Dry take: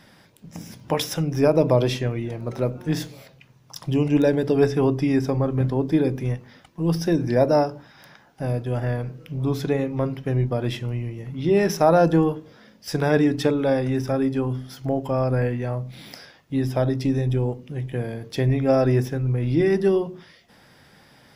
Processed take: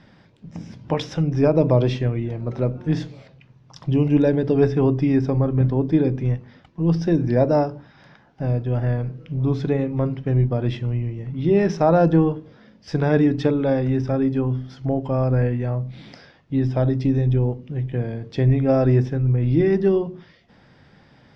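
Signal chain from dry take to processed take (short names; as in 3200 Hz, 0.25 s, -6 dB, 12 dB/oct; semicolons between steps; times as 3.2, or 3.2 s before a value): Bessel low-pass 4100 Hz, order 4; low shelf 320 Hz +7 dB; gain -2 dB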